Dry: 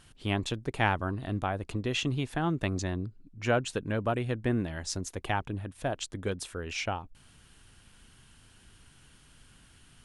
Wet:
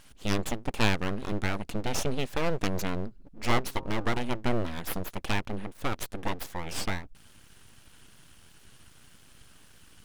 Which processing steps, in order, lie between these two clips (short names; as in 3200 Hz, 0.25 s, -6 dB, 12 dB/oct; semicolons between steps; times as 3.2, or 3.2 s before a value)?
full-wave rectifier; 3.59–4.33 de-hum 133.7 Hz, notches 11; gain +4 dB